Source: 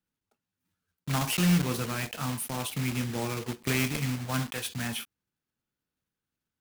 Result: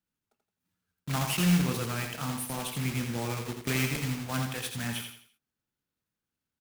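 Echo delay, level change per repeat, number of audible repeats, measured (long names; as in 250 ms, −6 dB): 84 ms, −9.0 dB, 4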